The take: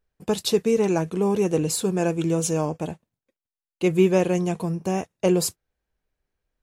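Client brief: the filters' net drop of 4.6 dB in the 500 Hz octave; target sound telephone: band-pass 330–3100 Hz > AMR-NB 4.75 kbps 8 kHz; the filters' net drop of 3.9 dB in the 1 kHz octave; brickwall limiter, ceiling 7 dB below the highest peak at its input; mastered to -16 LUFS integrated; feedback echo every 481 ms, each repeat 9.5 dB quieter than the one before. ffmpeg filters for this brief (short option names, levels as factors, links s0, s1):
-af "equalizer=f=500:t=o:g=-3.5,equalizer=f=1000:t=o:g=-3.5,alimiter=limit=0.15:level=0:latency=1,highpass=330,lowpass=3100,aecho=1:1:481|962|1443|1924:0.335|0.111|0.0365|0.012,volume=5.96" -ar 8000 -c:a libopencore_amrnb -b:a 4750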